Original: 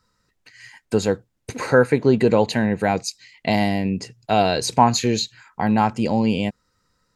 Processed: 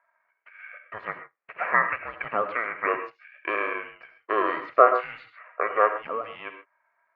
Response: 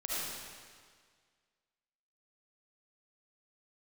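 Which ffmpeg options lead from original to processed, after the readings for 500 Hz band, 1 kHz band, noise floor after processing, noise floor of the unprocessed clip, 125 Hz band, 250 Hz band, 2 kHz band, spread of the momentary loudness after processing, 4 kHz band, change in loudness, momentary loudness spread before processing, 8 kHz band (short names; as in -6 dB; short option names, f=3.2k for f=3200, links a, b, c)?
-7.0 dB, -3.0 dB, -73 dBFS, -71 dBFS, under -25 dB, -21.0 dB, 0.0 dB, 21 LU, -20.5 dB, -5.0 dB, 11 LU, under -40 dB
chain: -filter_complex "[0:a]asuperpass=centerf=1300:order=8:qfactor=1,asplit=2[a][b];[1:a]atrim=start_sample=2205,atrim=end_sample=6615[c];[b][c]afir=irnorm=-1:irlink=0,volume=-7dB[d];[a][d]amix=inputs=2:normalize=0,aeval=exprs='val(0)*sin(2*PI*330*n/s)':c=same,volume=2.5dB"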